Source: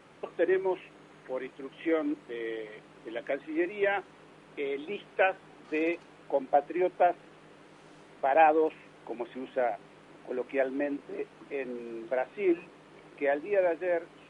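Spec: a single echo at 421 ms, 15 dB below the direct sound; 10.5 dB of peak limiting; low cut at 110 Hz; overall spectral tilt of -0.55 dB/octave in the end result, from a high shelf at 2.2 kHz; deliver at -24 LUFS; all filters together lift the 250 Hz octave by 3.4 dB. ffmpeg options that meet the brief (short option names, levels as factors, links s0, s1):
-af "highpass=110,equalizer=f=250:t=o:g=5.5,highshelf=f=2200:g=-3.5,alimiter=limit=0.1:level=0:latency=1,aecho=1:1:421:0.178,volume=2.66"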